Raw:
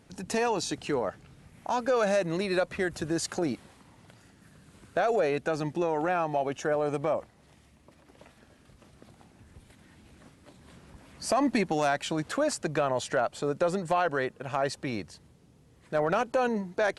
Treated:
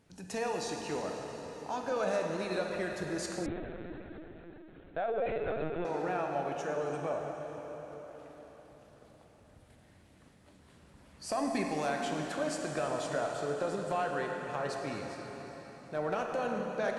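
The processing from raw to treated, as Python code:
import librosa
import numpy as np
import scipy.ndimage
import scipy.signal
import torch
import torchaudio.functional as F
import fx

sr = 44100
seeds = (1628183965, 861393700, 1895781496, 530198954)

y = fx.rev_plate(x, sr, seeds[0], rt60_s=4.9, hf_ratio=0.85, predelay_ms=0, drr_db=0.5)
y = fx.lpc_vocoder(y, sr, seeds[1], excitation='pitch_kept', order=16, at=(3.46, 5.85))
y = F.gain(torch.from_numpy(y), -8.5).numpy()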